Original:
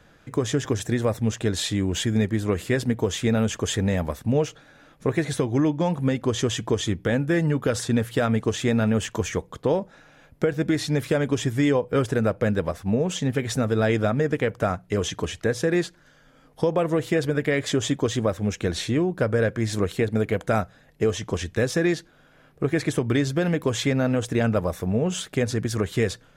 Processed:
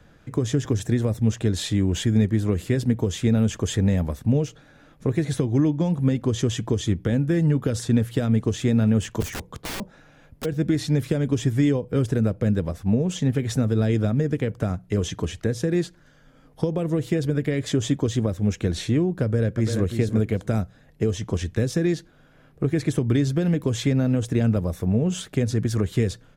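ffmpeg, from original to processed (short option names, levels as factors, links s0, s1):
-filter_complex "[0:a]asplit=3[s0][s1][s2];[s0]afade=t=out:st=9.2:d=0.02[s3];[s1]aeval=exprs='(mod(16.8*val(0)+1,2)-1)/16.8':c=same,afade=t=in:st=9.2:d=0.02,afade=t=out:st=10.44:d=0.02[s4];[s2]afade=t=in:st=10.44:d=0.02[s5];[s3][s4][s5]amix=inputs=3:normalize=0,asplit=2[s6][s7];[s7]afade=t=in:st=19.23:d=0.01,afade=t=out:st=19.86:d=0.01,aecho=0:1:340|680:0.398107|0.0597161[s8];[s6][s8]amix=inputs=2:normalize=0,lowshelf=f=330:g=7.5,acrossover=split=420|3000[s9][s10][s11];[s10]acompressor=threshold=0.0316:ratio=6[s12];[s9][s12][s11]amix=inputs=3:normalize=0,volume=0.75"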